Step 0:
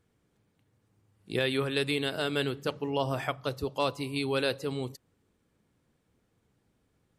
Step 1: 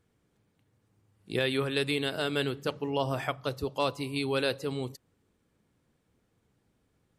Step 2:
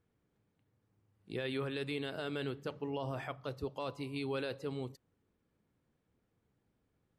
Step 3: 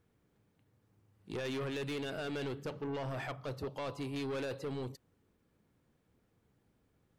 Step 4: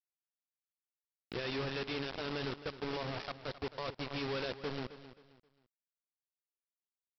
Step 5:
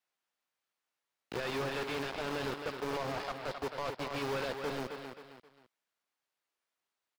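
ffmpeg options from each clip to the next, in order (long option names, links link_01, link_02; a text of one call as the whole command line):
ffmpeg -i in.wav -af anull out.wav
ffmpeg -i in.wav -af "highshelf=frequency=4500:gain=-10,alimiter=limit=-21.5dB:level=0:latency=1:release=19,volume=-6dB" out.wav
ffmpeg -i in.wav -af "asoftclip=type=tanh:threshold=-39dB,volume=5dB" out.wav
ffmpeg -i in.wav -af "aresample=11025,acrusher=bits=5:mix=0:aa=0.000001,aresample=44100,aecho=1:1:265|530|795:0.2|0.0619|0.0192,volume=-3dB" out.wav
ffmpeg -i in.wav -filter_complex "[0:a]asplit=2[link_01][link_02];[link_02]highpass=frequency=720:poles=1,volume=22dB,asoftclip=type=tanh:threshold=-28.5dB[link_03];[link_01][link_03]amix=inputs=2:normalize=0,lowpass=frequency=1400:poles=1,volume=-6dB,acrossover=split=340|2700[link_04][link_05][link_06];[link_04]acrusher=samples=33:mix=1:aa=0.000001[link_07];[link_06]asplit=2[link_08][link_09];[link_09]adelay=16,volume=-6.5dB[link_10];[link_08][link_10]amix=inputs=2:normalize=0[link_11];[link_07][link_05][link_11]amix=inputs=3:normalize=0,volume=1.5dB" out.wav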